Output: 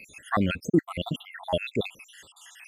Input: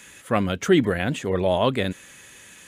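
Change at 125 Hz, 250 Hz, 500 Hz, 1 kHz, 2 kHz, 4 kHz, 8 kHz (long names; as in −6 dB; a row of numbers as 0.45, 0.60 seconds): −5.5, −4.5, −9.0, −5.5, −6.0, −5.0, −9.0 decibels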